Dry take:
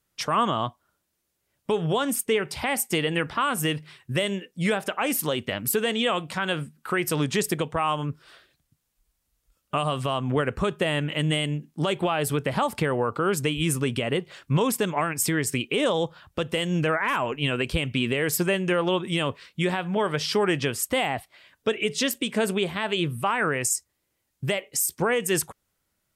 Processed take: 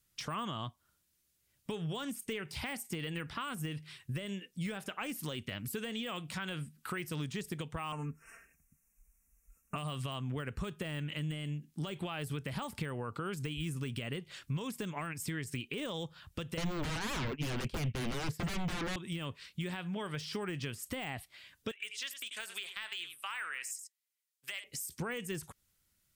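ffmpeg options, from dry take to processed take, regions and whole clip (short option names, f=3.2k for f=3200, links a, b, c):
-filter_complex "[0:a]asettb=1/sr,asplit=3[a][b][c];[a]atrim=end=7.924[d];[b]atrim=start=7.92:end=9.76,asetpts=PTS-STARTPTS,afade=t=in:d=0.004:c=qsin,afade=t=out:st=1.836:d=0.004:c=qsin,asuperstop=centerf=3900:order=12:qfactor=1.3,aecho=1:1:4.4:0.76,atrim=end_sample=81144[e];[c]atrim=start=9.756[f];[d][e]acrossfade=d=0.004:c1=hsin:c2=qsin[g];[g][f]acrossfade=d=0.004:c1=qsin:c2=hsin,asettb=1/sr,asplit=3[h][i][j];[h]atrim=end=16.574[k];[i]atrim=start=16.57:end=18.96,asetpts=PTS-STARTPTS,afade=t=in:d=0.004:c=qsin,afade=t=out:st=2.386:d=0.004:c=qsin,lowpass=f=2.4k:p=1,agate=range=-33dB:threshold=-27dB:ratio=3:release=100:detection=peak,aeval=exprs='0.2*sin(PI/2*6.31*val(0)/0.2)':c=same[l];[j]atrim=start=18.956[m];[k][l]acrossfade=d=0.004:c1=hsin:c2=qsin[n];[n][m]acrossfade=d=0.004:c1=qsin:c2=hsin,asettb=1/sr,asplit=3[o][p][q];[o]atrim=end=21.714[r];[p]atrim=start=21.71:end=24.64,asetpts=PTS-STARTPTS,afade=t=in:d=0.004:c=qsin,afade=t=out:st=2.926:d=0.004:c=qsin,agate=range=-12dB:threshold=-32dB:ratio=16:release=100:detection=peak,highpass=1.4k,aecho=1:1:88:0.2,atrim=end_sample=129213[s];[q]atrim=start=24.636[t];[r][s]acrossfade=d=0.004:c1=hsin:c2=qsin[u];[u][t]acrossfade=d=0.004:c1=qsin:c2=hsin,deesser=0.9,equalizer=f=620:w=0.44:g=-12,acompressor=threshold=-41dB:ratio=2.5,volume=2dB"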